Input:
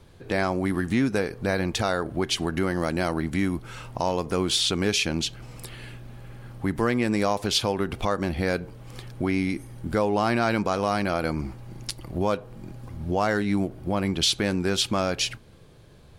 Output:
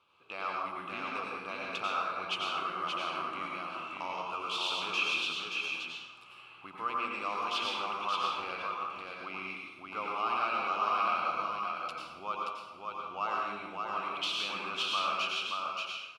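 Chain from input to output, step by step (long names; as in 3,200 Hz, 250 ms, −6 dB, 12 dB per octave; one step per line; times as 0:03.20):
stylus tracing distortion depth 0.027 ms
pair of resonant band-passes 1,800 Hz, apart 1.1 octaves
single-tap delay 577 ms −4 dB
dense smooth reverb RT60 1 s, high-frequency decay 0.75×, pre-delay 80 ms, DRR −2 dB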